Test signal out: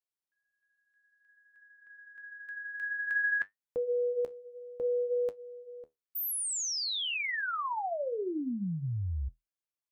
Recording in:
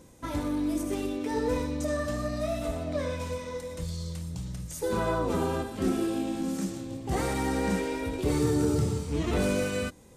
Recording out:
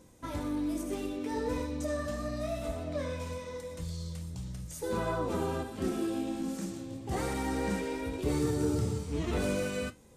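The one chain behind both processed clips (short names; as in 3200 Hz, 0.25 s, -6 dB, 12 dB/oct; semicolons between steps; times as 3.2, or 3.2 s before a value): flange 0.56 Hz, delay 9.2 ms, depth 6.5 ms, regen -60%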